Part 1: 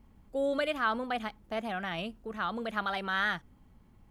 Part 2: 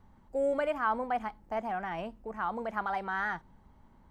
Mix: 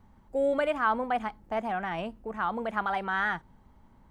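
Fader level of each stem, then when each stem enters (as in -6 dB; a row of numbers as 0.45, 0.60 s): -8.0, +1.0 dB; 0.00, 0.00 s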